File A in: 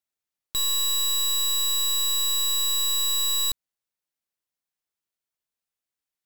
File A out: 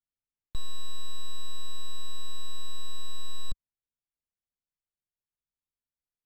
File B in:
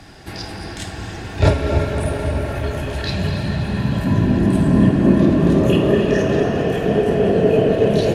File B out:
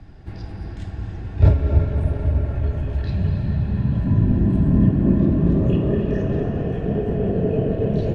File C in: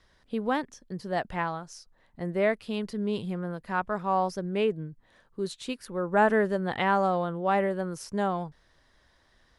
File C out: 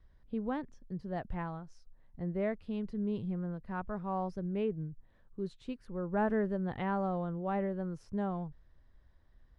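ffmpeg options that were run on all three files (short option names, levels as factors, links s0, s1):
-af "aemphasis=mode=reproduction:type=riaa,volume=0.266"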